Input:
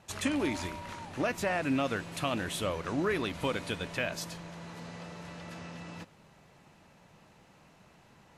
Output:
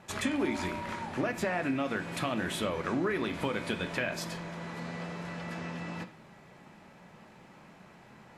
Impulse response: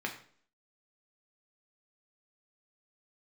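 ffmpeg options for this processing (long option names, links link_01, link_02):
-filter_complex "[0:a]acompressor=threshold=-33dB:ratio=6,asplit=2[link_01][link_02];[1:a]atrim=start_sample=2205,lowpass=6900[link_03];[link_02][link_03]afir=irnorm=-1:irlink=0,volume=-3dB[link_04];[link_01][link_04]amix=inputs=2:normalize=0"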